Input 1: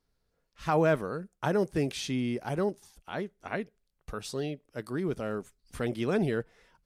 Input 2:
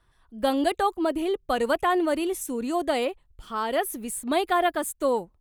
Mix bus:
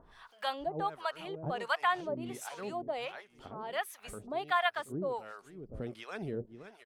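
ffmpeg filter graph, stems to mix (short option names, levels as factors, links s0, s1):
-filter_complex "[0:a]highshelf=f=8800:g=-8,volume=0.596,asplit=2[s0][s1];[s1]volume=0.178[s2];[1:a]acrossover=split=590 5600:gain=0.0708 1 0.178[s3][s4][s5];[s3][s4][s5]amix=inputs=3:normalize=0,volume=0.944,asplit=2[s6][s7];[s7]apad=whole_len=302109[s8];[s0][s8]sidechaincompress=threshold=0.0112:ratio=8:attack=37:release=144[s9];[s2]aecho=0:1:522|1044|1566|2088|2610:1|0.36|0.13|0.0467|0.0168[s10];[s9][s6][s10]amix=inputs=3:normalize=0,acompressor=mode=upward:threshold=0.02:ratio=2.5,acrossover=split=690[s11][s12];[s11]aeval=exprs='val(0)*(1-1/2+1/2*cos(2*PI*1.4*n/s))':c=same[s13];[s12]aeval=exprs='val(0)*(1-1/2-1/2*cos(2*PI*1.4*n/s))':c=same[s14];[s13][s14]amix=inputs=2:normalize=0"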